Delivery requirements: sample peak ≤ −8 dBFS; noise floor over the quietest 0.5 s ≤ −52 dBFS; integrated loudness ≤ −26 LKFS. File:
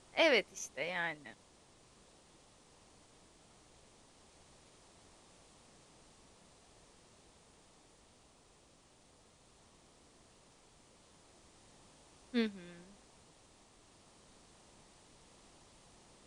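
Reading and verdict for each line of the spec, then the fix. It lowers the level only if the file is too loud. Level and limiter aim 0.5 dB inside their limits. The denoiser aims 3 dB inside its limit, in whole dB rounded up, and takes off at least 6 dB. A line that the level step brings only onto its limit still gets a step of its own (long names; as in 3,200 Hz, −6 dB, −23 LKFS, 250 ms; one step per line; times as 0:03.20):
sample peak −16.5 dBFS: in spec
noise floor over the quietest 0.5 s −65 dBFS: in spec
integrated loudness −35.0 LKFS: in spec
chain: no processing needed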